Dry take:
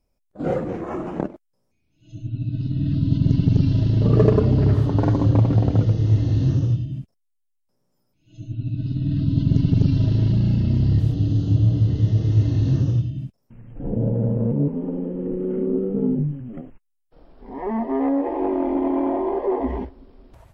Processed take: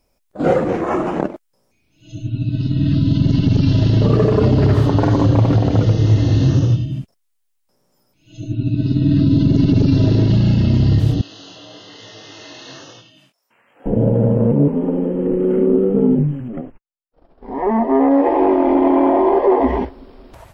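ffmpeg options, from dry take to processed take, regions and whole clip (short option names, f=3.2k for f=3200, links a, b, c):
-filter_complex "[0:a]asettb=1/sr,asplit=3[a][b][c];[a]atrim=end=8.434[d];[b]atrim=start=8.43:end=10.3,asetpts=PTS-STARTPTS,afade=t=in:d=0.004:c=qsin,afade=t=out:st=1.866:d=0.004:c=qsin,equalizer=f=380:w=0.91:g=7,bandreject=f=3.1k:w=10[e];[c]atrim=start=10.296[f];[d][e]acrossfade=d=0.004:c1=hsin:c2=qsin[g];[g][f]acrossfade=d=0.004:c1=qsin:c2=hsin,asettb=1/sr,asplit=3[h][i][j];[h]atrim=end=11.214[k];[i]atrim=start=11.21:end=13.86,asetpts=PTS-STARTPTS,afade=t=in:d=0.004:c=qsin,afade=t=out:st=2.646:d=0.004:c=qsin,highpass=900,flanger=delay=18:depth=6:speed=1.1[l];[j]atrim=start=13.856[m];[k][l]acrossfade=d=0.004:c1=hsin:c2=qsin[n];[n][m]acrossfade=d=0.004:c1=qsin:c2=hsin,asettb=1/sr,asplit=3[o][p][q];[o]atrim=end=16.484[r];[p]atrim=start=16.48:end=18.11,asetpts=PTS-STARTPTS,afade=t=in:d=0.004:c=qsin,afade=t=out:st=1.626:d=0.004:c=qsin,agate=range=-33dB:threshold=-40dB:ratio=3:release=100:detection=peak,highshelf=f=2k:g=-9.5[s];[q]atrim=start=18.106[t];[r][s]acrossfade=d=0.004:c1=hsin:c2=qsin[u];[u][t]acrossfade=d=0.004:c1=qsin:c2=hsin,lowshelf=f=300:g=-8.5,alimiter=level_in=16.5dB:limit=-1dB:release=50:level=0:latency=1,volume=-4dB"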